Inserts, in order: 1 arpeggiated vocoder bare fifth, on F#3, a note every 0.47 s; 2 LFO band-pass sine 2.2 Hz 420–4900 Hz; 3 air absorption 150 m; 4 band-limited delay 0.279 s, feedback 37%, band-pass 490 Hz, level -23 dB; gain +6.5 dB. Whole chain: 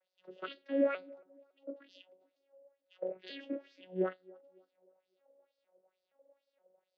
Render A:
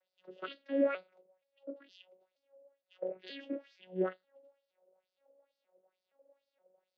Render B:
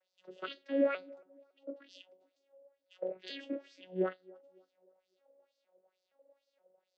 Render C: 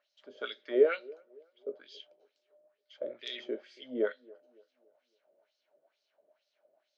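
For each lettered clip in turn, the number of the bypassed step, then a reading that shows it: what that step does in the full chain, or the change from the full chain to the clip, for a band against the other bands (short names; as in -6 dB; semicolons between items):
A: 4, echo-to-direct -28.0 dB to none; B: 3, 4 kHz band +3.0 dB; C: 1, 250 Hz band -8.5 dB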